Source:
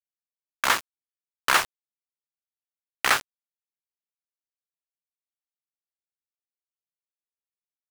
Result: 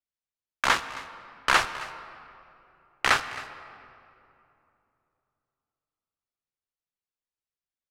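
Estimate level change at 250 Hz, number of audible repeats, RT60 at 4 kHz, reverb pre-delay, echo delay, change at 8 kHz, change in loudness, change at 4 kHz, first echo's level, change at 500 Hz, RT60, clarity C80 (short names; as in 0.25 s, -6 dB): +1.5 dB, 1, 1.6 s, 26 ms, 0.268 s, -5.0 dB, -2.0 dB, -1.0 dB, -18.0 dB, +0.5 dB, 2.9 s, 12.0 dB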